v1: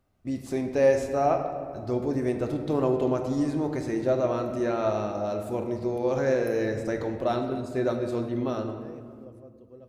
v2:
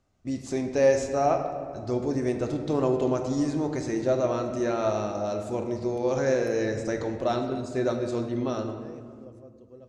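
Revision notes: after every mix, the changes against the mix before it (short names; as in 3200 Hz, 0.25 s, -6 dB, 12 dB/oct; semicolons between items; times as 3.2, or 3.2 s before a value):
master: add synth low-pass 6800 Hz, resonance Q 2.3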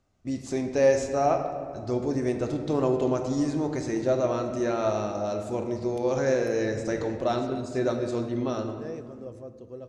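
second voice +8.0 dB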